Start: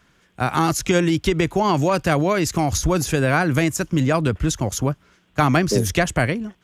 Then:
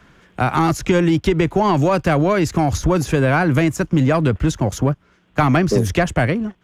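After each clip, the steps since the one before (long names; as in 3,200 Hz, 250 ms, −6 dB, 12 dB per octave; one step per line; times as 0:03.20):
leveller curve on the samples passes 1
high-shelf EQ 3,400 Hz −10.5 dB
multiband upward and downward compressor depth 40%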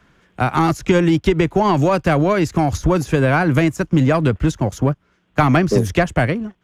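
expander for the loud parts 1.5 to 1, over −26 dBFS
level +2 dB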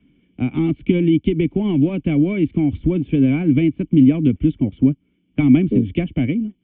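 formant resonators in series i
level +8 dB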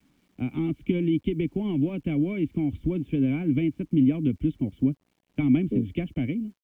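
bit reduction 10 bits
level −8.5 dB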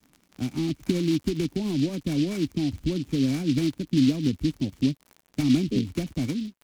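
surface crackle 62 per second −36 dBFS
short delay modulated by noise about 3,500 Hz, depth 0.072 ms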